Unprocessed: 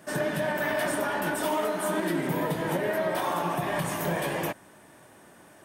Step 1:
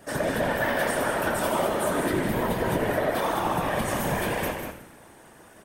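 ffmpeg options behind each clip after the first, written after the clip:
-filter_complex "[0:a]asplit=2[a][b];[b]asplit=6[c][d][e][f][g][h];[c]adelay=85,afreqshift=-90,volume=-9.5dB[i];[d]adelay=170,afreqshift=-180,volume=-15.2dB[j];[e]adelay=255,afreqshift=-270,volume=-20.9dB[k];[f]adelay=340,afreqshift=-360,volume=-26.5dB[l];[g]adelay=425,afreqshift=-450,volume=-32.2dB[m];[h]adelay=510,afreqshift=-540,volume=-37.9dB[n];[i][j][k][l][m][n]amix=inputs=6:normalize=0[o];[a][o]amix=inputs=2:normalize=0,afftfilt=real='hypot(re,im)*cos(2*PI*random(0))':imag='hypot(re,im)*sin(2*PI*random(1))':win_size=512:overlap=0.75,asplit=2[p][q];[q]aecho=0:1:151.6|192.4:0.282|0.398[r];[p][r]amix=inputs=2:normalize=0,volume=7dB"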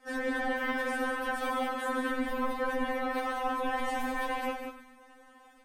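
-af "lowpass=f=1.4k:p=1,equalizer=f=280:w=0.41:g=-8,afftfilt=real='re*3.46*eq(mod(b,12),0)':imag='im*3.46*eq(mod(b,12),0)':win_size=2048:overlap=0.75,volume=3.5dB"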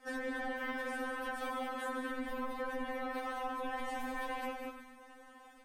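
-af "acompressor=threshold=-39dB:ratio=2.5"

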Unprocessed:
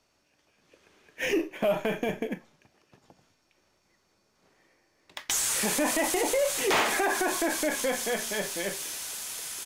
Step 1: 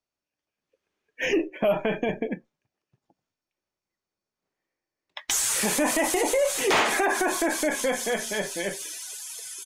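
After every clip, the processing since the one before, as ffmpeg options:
-af "afftdn=nr=23:nf=-41,volume=3dB"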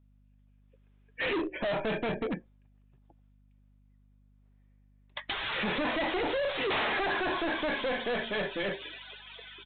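-af "aresample=8000,asoftclip=type=hard:threshold=-30.5dB,aresample=44100,aeval=exprs='val(0)+0.000708*(sin(2*PI*50*n/s)+sin(2*PI*2*50*n/s)/2+sin(2*PI*3*50*n/s)/3+sin(2*PI*4*50*n/s)/4+sin(2*PI*5*50*n/s)/5)':c=same,volume=2dB"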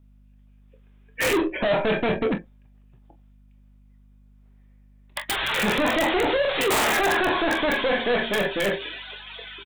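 -filter_complex "[0:a]acrossover=split=1400[a][b];[b]aeval=exprs='(mod(23.7*val(0)+1,2)-1)/23.7':c=same[c];[a][c]amix=inputs=2:normalize=0,aecho=1:1:25|43:0.316|0.2,volume=8dB"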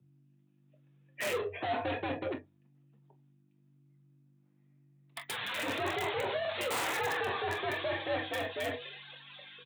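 -af "flanger=delay=2.3:depth=7:regen=-36:speed=1:shape=triangular,afreqshift=90,volume=-8dB"

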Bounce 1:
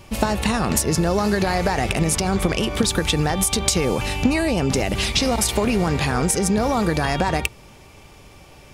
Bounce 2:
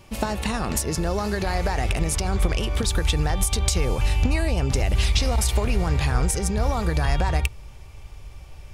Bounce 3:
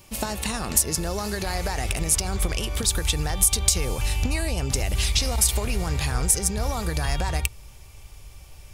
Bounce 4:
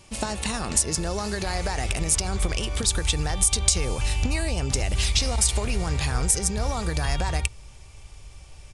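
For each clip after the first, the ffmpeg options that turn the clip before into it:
-af "asubboost=boost=9:cutoff=75,volume=-5dB"
-af "crystalizer=i=2.5:c=0,volume=-4dB"
-af "aresample=22050,aresample=44100"

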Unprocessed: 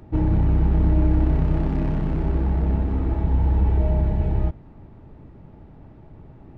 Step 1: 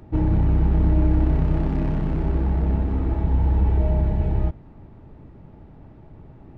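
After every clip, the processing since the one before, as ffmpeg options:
-af anull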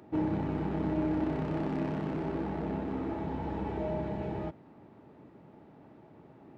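-af "highpass=230,volume=-3dB"

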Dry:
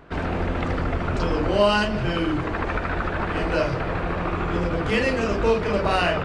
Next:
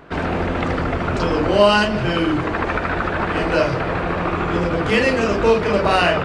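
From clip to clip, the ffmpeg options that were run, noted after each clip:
-af "lowshelf=f=65:g=-10.5,volume=5.5dB"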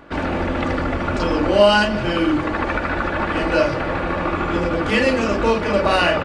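-af "aecho=1:1:3.5:0.41,volume=-1dB"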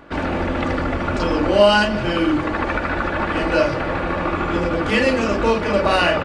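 -af anull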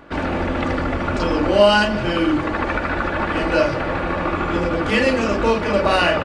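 -filter_complex "[0:a]asplit=2[a][b];[b]adelay=110,highpass=300,lowpass=3.4k,asoftclip=type=hard:threshold=-11dB,volume=-21dB[c];[a][c]amix=inputs=2:normalize=0"

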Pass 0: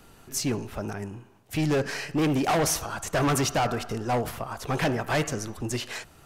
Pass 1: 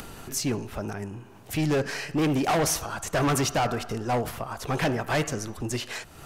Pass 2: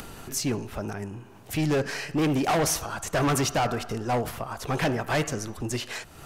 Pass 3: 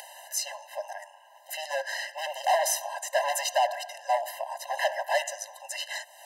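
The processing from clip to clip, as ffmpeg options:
-af "acompressor=mode=upward:threshold=-31dB:ratio=2.5"
-af anull
-af "afftfilt=real='re*eq(mod(floor(b*sr/1024/530),2),1)':imag='im*eq(mod(floor(b*sr/1024/530),2),1)':win_size=1024:overlap=0.75,volume=2.5dB"

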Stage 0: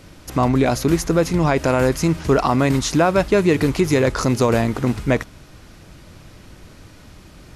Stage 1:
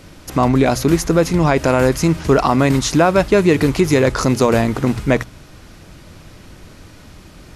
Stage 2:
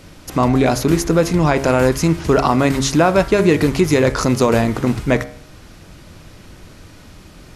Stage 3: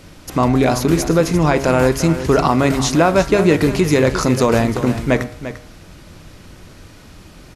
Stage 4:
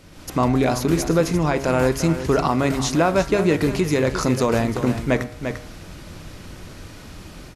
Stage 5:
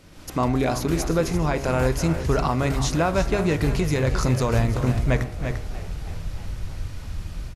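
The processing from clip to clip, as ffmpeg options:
-af "bandreject=f=60:t=h:w=6,bandreject=f=120:t=h:w=6,volume=3dB"
-af "bandreject=f=68.06:t=h:w=4,bandreject=f=136.12:t=h:w=4,bandreject=f=204.18:t=h:w=4,bandreject=f=272.24:t=h:w=4,bandreject=f=340.3:t=h:w=4,bandreject=f=408.36:t=h:w=4,bandreject=f=476.42:t=h:w=4,bandreject=f=544.48:t=h:w=4,bandreject=f=612.54:t=h:w=4,bandreject=f=680.6:t=h:w=4,bandreject=f=748.66:t=h:w=4,bandreject=f=816.72:t=h:w=4,bandreject=f=884.78:t=h:w=4,bandreject=f=952.84:t=h:w=4,bandreject=f=1.0209k:t=h:w=4,bandreject=f=1.08896k:t=h:w=4,bandreject=f=1.15702k:t=h:w=4,bandreject=f=1.22508k:t=h:w=4,bandreject=f=1.29314k:t=h:w=4,bandreject=f=1.3612k:t=h:w=4,bandreject=f=1.42926k:t=h:w=4,bandreject=f=1.49732k:t=h:w=4,bandreject=f=1.56538k:t=h:w=4,bandreject=f=1.63344k:t=h:w=4,bandreject=f=1.7015k:t=h:w=4,bandreject=f=1.76956k:t=h:w=4,bandreject=f=1.83762k:t=h:w=4,bandreject=f=1.90568k:t=h:w=4,bandreject=f=1.97374k:t=h:w=4,bandreject=f=2.0418k:t=h:w=4,bandreject=f=2.10986k:t=h:w=4,bandreject=f=2.17792k:t=h:w=4,bandreject=f=2.24598k:t=h:w=4,bandreject=f=2.31404k:t=h:w=4,bandreject=f=2.3821k:t=h:w=4"
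-af "aecho=1:1:346:0.251"
-af "dynaudnorm=f=110:g=3:m=8.5dB,volume=-6.5dB"
-filter_complex "[0:a]asplit=7[a][b][c][d][e][f][g];[b]adelay=318,afreqshift=59,volume=-16.5dB[h];[c]adelay=636,afreqshift=118,volume=-20.7dB[i];[d]adelay=954,afreqshift=177,volume=-24.8dB[j];[e]adelay=1272,afreqshift=236,volume=-29dB[k];[f]adelay=1590,afreqshift=295,volume=-33.1dB[l];[g]adelay=1908,afreqshift=354,volume=-37.3dB[m];[a][h][i][j][k][l][m]amix=inputs=7:normalize=0,asubboost=boost=6:cutoff=110,volume=-3dB"

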